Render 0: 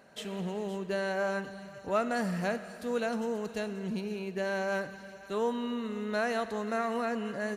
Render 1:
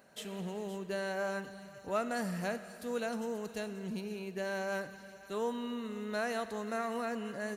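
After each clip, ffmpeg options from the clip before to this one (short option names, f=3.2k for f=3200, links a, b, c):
-af "highshelf=f=8.3k:g=10.5,volume=-4.5dB"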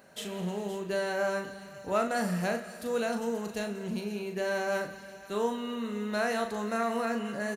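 -filter_complex "[0:a]asplit=2[a][b];[b]adelay=39,volume=-6dB[c];[a][c]amix=inputs=2:normalize=0,volume=4.5dB"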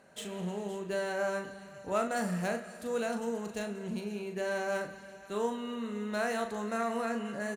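-af "adynamicsmooth=sensitivity=5:basefreq=5.9k,aexciter=amount=4:drive=2.5:freq=7k,volume=-2.5dB"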